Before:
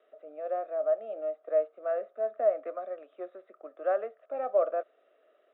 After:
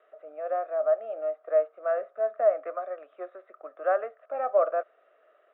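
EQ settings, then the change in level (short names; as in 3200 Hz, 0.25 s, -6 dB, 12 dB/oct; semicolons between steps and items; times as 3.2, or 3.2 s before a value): band-pass 1300 Hz, Q 0.92; air absorption 110 m; +8.5 dB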